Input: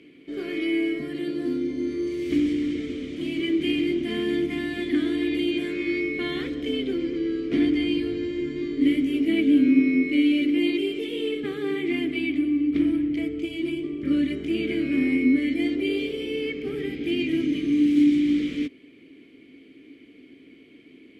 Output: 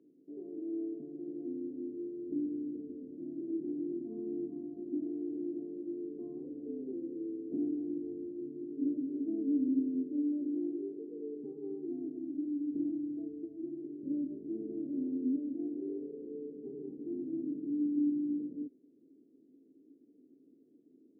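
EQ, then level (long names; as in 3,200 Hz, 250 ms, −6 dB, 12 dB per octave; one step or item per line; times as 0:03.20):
Gaussian smoothing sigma 17 samples
high-pass filter 230 Hz 12 dB per octave
high-frequency loss of the air 220 metres
−8.5 dB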